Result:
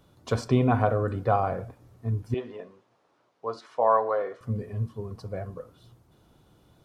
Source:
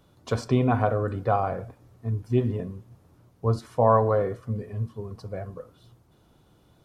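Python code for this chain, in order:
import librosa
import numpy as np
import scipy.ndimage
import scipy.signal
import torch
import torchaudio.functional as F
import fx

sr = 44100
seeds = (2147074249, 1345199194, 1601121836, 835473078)

y = fx.bandpass_edges(x, sr, low_hz=550.0, high_hz=4900.0, at=(2.34, 4.41))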